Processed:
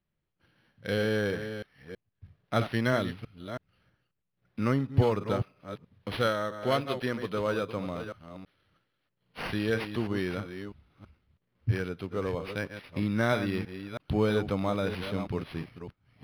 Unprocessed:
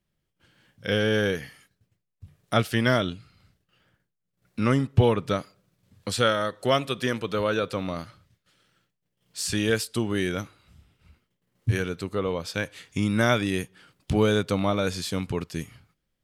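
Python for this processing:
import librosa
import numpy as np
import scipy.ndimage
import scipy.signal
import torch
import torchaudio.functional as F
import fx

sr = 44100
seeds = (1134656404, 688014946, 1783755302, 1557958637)

y = fx.reverse_delay(x, sr, ms=325, wet_db=-9.0)
y = np.interp(np.arange(len(y)), np.arange(len(y))[::6], y[::6])
y = y * 10.0 ** (-4.5 / 20.0)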